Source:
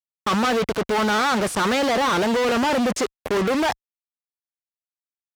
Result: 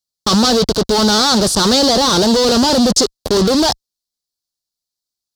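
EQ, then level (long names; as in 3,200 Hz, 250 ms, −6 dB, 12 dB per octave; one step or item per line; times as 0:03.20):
spectral tilt −2 dB per octave
high shelf with overshoot 3,200 Hz +12 dB, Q 3
+5.0 dB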